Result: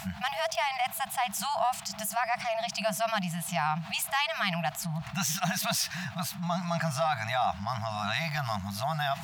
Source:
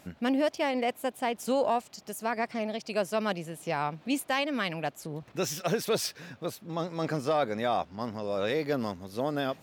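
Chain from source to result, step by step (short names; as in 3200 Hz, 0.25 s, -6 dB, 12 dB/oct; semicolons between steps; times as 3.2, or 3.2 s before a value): FFT band-reject 200–620 Hz; speed mistake 24 fps film run at 25 fps; fast leveller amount 50%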